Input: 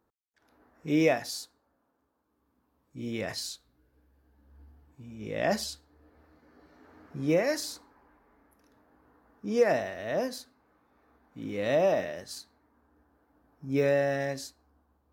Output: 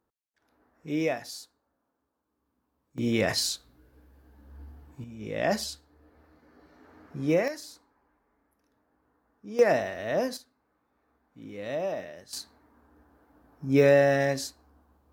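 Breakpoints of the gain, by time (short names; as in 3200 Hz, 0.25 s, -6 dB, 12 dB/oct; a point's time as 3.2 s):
-4 dB
from 2.98 s +8.5 dB
from 5.04 s +1 dB
from 7.48 s -8 dB
from 9.59 s +2.5 dB
from 10.37 s -6.5 dB
from 12.33 s +6 dB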